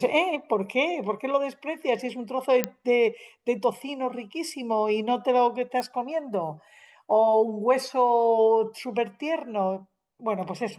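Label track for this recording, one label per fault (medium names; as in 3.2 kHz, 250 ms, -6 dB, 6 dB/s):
2.640000	2.640000	pop -8 dBFS
5.800000	5.800000	pop -17 dBFS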